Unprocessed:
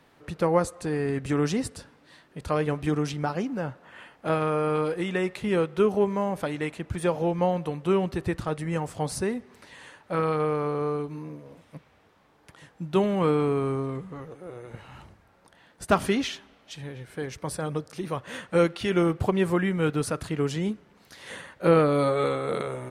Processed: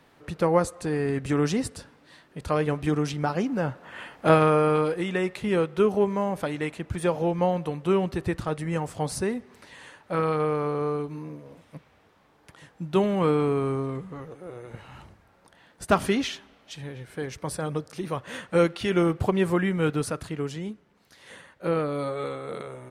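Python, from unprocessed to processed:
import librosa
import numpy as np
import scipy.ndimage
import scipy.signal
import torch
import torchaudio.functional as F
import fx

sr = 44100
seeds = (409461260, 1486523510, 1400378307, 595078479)

y = fx.gain(x, sr, db=fx.line((3.13, 1.0), (4.28, 8.0), (5.0, 0.5), (19.92, 0.5), (20.7, -6.5)))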